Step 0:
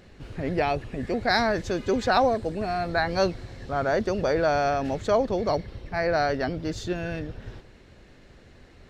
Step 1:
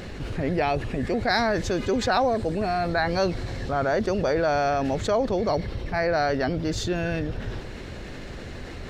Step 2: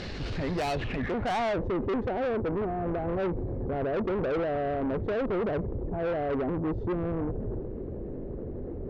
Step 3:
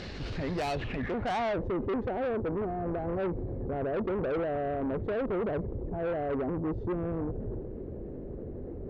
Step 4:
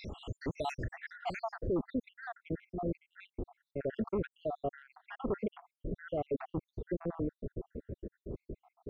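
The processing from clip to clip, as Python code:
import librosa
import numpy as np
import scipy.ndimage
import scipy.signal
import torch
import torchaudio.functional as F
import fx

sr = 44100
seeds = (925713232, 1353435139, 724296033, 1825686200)

y1 = fx.env_flatten(x, sr, amount_pct=50)
y1 = F.gain(torch.from_numpy(y1), -2.0).numpy()
y2 = fx.filter_sweep_lowpass(y1, sr, from_hz=4800.0, to_hz=430.0, start_s=0.66, end_s=1.72, q=2.0)
y2 = 10.0 ** (-26.0 / 20.0) * np.tanh(y2 / 10.0 ** (-26.0 / 20.0))
y3 = fx.cheby_harmonics(y2, sr, harmonics=(3,), levels_db=(-26,), full_scale_db=-25.5)
y3 = F.gain(torch.from_numpy(y3), -2.0).numpy()
y4 = fx.spec_dropout(y3, sr, seeds[0], share_pct=78)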